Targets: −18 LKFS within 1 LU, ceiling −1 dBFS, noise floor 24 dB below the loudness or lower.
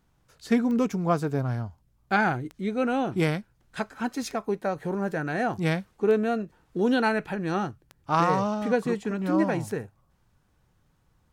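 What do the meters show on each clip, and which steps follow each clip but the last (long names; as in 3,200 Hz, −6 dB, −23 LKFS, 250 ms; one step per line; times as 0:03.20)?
number of clicks 6; integrated loudness −27.0 LKFS; sample peak −11.0 dBFS; target loudness −18.0 LKFS
→ click removal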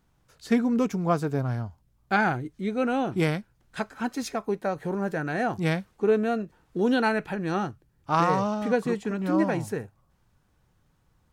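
number of clicks 0; integrated loudness −27.0 LKFS; sample peak −11.0 dBFS; target loudness −18.0 LKFS
→ level +9 dB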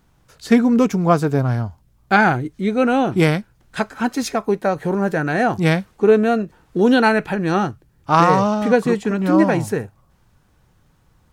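integrated loudness −18.0 LKFS; sample peak −2.0 dBFS; background noise floor −58 dBFS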